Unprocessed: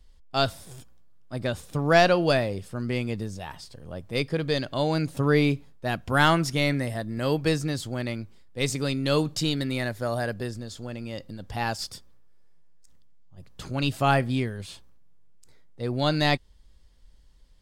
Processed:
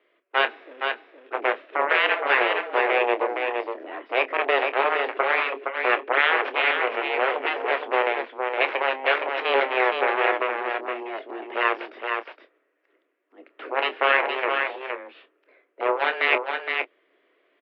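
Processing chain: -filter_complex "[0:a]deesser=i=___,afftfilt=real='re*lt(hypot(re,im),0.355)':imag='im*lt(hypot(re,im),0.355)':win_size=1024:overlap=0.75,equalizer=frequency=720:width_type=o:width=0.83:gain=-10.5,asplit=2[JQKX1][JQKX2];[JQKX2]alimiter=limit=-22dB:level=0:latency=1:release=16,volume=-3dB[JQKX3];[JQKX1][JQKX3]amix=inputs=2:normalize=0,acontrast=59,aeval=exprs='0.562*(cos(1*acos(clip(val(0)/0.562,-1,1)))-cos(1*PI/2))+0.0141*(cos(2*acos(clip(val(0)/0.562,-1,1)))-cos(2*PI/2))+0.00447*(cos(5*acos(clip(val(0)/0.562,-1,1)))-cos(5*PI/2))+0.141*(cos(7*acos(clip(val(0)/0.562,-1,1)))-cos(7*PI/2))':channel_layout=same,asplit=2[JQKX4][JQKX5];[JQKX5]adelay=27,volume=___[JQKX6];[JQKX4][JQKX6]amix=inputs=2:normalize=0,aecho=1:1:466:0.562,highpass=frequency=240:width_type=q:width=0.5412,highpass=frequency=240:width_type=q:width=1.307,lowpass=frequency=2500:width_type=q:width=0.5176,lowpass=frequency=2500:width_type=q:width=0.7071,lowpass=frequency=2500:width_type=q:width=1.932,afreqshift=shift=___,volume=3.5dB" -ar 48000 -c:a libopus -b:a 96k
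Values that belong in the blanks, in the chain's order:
0.25, -12dB, 130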